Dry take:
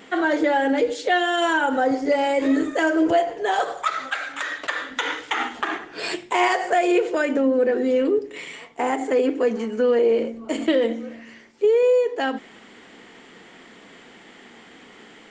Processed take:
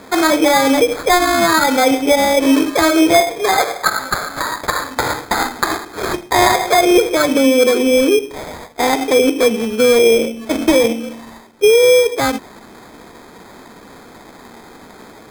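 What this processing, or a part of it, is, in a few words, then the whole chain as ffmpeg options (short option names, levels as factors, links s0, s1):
crushed at another speed: -af "asetrate=22050,aresample=44100,acrusher=samples=31:mix=1:aa=0.000001,asetrate=88200,aresample=44100,volume=2.37"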